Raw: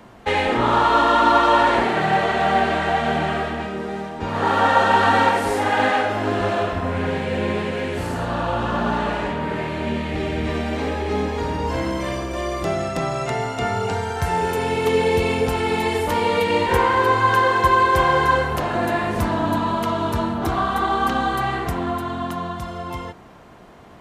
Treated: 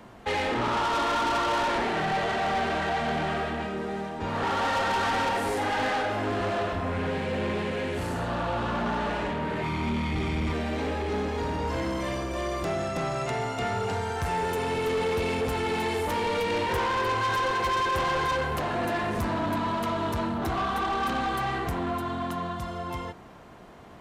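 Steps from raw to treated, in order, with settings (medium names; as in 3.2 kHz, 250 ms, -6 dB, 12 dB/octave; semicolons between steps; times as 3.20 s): 9.63–10.53 s: comb 0.9 ms, depth 89%; saturation -20.5 dBFS, distortion -9 dB; trim -3 dB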